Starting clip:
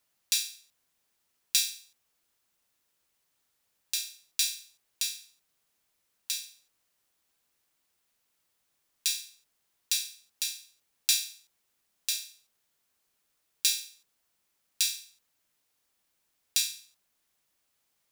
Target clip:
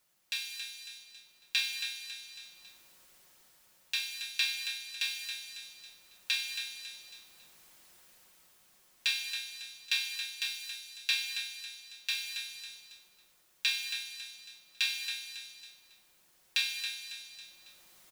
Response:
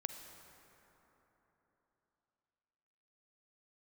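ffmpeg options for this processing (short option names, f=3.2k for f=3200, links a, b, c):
-filter_complex "[0:a]asettb=1/sr,asplit=3[a][b][c];[a]atrim=end=9.934[d];[b]atrim=start=9.93:end=12.17,asetpts=PTS-STARTPTS,afade=t=in:d=0.004:c=qsin,afade=t=out:st=2.236:d=0.004:c=qsin,highpass=f=180:p=1[e];[c]atrim=start=12.166[f];[d][e]acrossfade=d=0.004:c1=hsin:c2=qsin[g];[g][f]acrossfade=d=0.004:c1=qsin:c2=hsin,asplit=2[h][i];[i]adelay=275,lowpass=f=4.3k:p=1,volume=-7.5dB,asplit=2[j][k];[k]adelay=275,lowpass=f=4.3k:p=1,volume=0.37,asplit=2[l][m];[m]adelay=275,lowpass=f=4.3k:p=1,volume=0.37,asplit=2[n][o];[o]adelay=275,lowpass=f=4.3k:p=1,volume=0.37[p];[h][j][l][n][p]amix=inputs=5:normalize=0[q];[1:a]atrim=start_sample=2205,afade=t=out:st=0.36:d=0.01,atrim=end_sample=16317[r];[q][r]afir=irnorm=-1:irlink=0,dynaudnorm=f=270:g=7:m=14dB,aecho=1:1:5.5:0.38,acrossover=split=3100[s][t];[t]acompressor=threshold=-50dB:ratio=4:attack=1:release=60[u];[s][u]amix=inputs=2:normalize=0,volume=4.5dB"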